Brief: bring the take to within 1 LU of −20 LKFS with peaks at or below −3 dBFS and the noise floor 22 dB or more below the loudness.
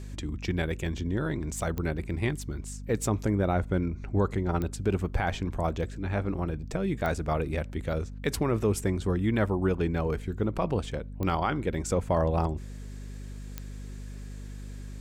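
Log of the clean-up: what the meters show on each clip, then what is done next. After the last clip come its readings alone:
number of clicks 5; mains hum 50 Hz; hum harmonics up to 250 Hz; level of the hum −37 dBFS; integrated loudness −30.0 LKFS; sample peak −15.0 dBFS; target loudness −20.0 LKFS
→ click removal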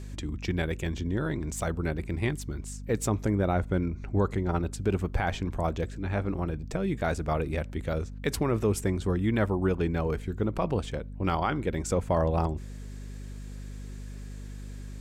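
number of clicks 0; mains hum 50 Hz; hum harmonics up to 250 Hz; level of the hum −37 dBFS
→ hum removal 50 Hz, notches 5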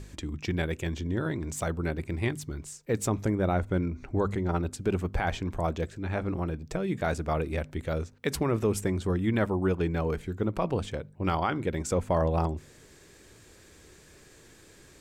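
mains hum none found; integrated loudness −30.0 LKFS; sample peak −15.0 dBFS; target loudness −20.0 LKFS
→ level +10 dB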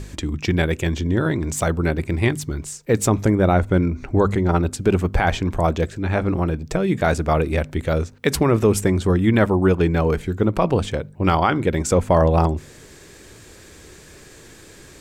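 integrated loudness −20.0 LKFS; sample peak −5.0 dBFS; background noise floor −45 dBFS

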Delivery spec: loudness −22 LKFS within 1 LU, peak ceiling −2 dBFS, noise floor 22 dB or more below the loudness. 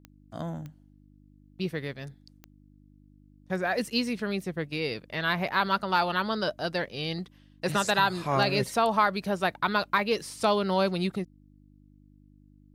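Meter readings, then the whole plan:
number of clicks 4; mains hum 50 Hz; hum harmonics up to 300 Hz; level of the hum −56 dBFS; integrated loudness −28.0 LKFS; sample peak −10.5 dBFS; target loudness −22.0 LKFS
→ click removal
hum removal 50 Hz, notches 6
level +6 dB

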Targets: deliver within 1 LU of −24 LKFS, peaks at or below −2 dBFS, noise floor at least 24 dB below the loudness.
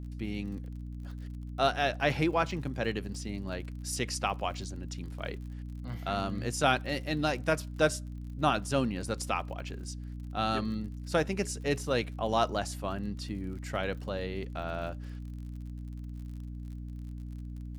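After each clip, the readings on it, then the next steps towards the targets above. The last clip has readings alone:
crackle rate 50 per second; mains hum 60 Hz; hum harmonics up to 300 Hz; level of the hum −38 dBFS; integrated loudness −33.5 LKFS; sample peak −11.0 dBFS; target loudness −24.0 LKFS
→ click removal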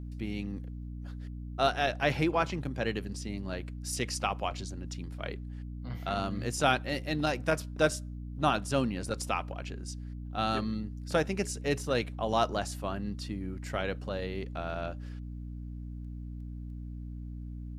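crackle rate 0.28 per second; mains hum 60 Hz; hum harmonics up to 300 Hz; level of the hum −38 dBFS
→ mains-hum notches 60/120/180/240/300 Hz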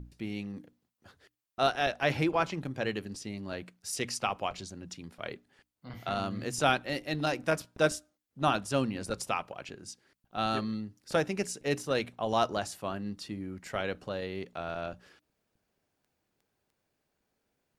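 mains hum none found; integrated loudness −32.5 LKFS; sample peak −11.0 dBFS; target loudness −24.0 LKFS
→ level +8.5 dB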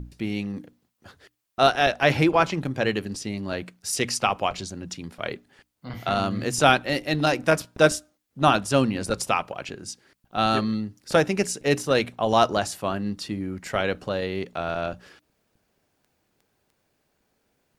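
integrated loudness −24.5 LKFS; sample peak −2.5 dBFS; background noise floor −73 dBFS

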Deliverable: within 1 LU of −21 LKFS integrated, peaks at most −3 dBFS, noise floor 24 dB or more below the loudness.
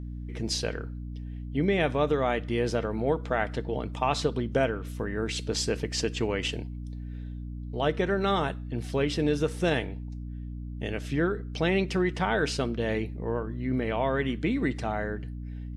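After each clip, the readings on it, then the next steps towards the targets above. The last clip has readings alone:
mains hum 60 Hz; hum harmonics up to 300 Hz; level of the hum −34 dBFS; integrated loudness −29.0 LKFS; sample peak −12.0 dBFS; target loudness −21.0 LKFS
→ mains-hum notches 60/120/180/240/300 Hz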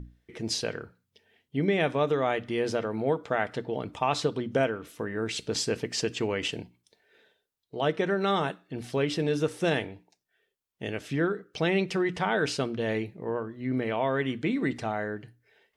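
mains hum none found; integrated loudness −29.5 LKFS; sample peak −12.5 dBFS; target loudness −21.0 LKFS
→ level +8.5 dB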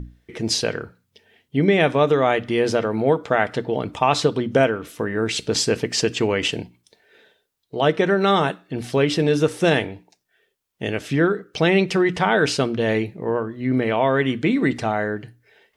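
integrated loudness −21.0 LKFS; sample peak −4.0 dBFS; background noise floor −71 dBFS

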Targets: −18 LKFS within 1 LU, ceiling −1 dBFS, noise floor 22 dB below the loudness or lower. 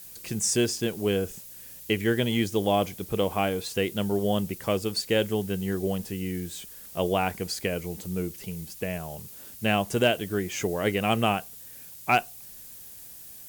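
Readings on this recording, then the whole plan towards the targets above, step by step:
background noise floor −45 dBFS; target noise floor −50 dBFS; integrated loudness −27.5 LKFS; sample peak −11.0 dBFS; target loudness −18.0 LKFS
→ broadband denoise 6 dB, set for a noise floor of −45 dBFS
level +9.5 dB

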